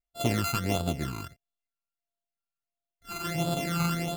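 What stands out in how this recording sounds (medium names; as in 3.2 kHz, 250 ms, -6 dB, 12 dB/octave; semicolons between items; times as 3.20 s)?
a buzz of ramps at a fixed pitch in blocks of 64 samples; phasing stages 12, 1.5 Hz, lowest notch 570–2000 Hz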